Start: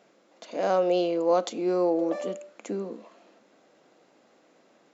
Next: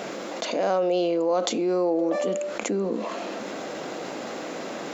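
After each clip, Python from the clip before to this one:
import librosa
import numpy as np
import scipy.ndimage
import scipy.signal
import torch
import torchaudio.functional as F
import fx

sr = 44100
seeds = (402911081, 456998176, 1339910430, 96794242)

y = fx.env_flatten(x, sr, amount_pct=70)
y = F.gain(torch.from_numpy(y), -2.0).numpy()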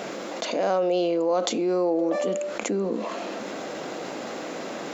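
y = x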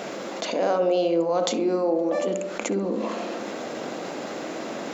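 y = fx.echo_filtered(x, sr, ms=65, feedback_pct=72, hz=980.0, wet_db=-6)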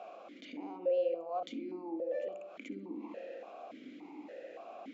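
y = fx.vowel_held(x, sr, hz=3.5)
y = F.gain(torch.from_numpy(y), -6.5).numpy()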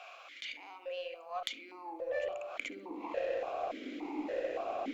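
y = fx.filter_sweep_highpass(x, sr, from_hz=1800.0, to_hz=310.0, start_s=1.15, end_s=4.2, q=1.0)
y = fx.cheby_harmonics(y, sr, harmonics=(2, 3, 4), levels_db=(-16, -18, -24), full_scale_db=-31.0)
y = F.gain(torch.from_numpy(y), 14.0).numpy()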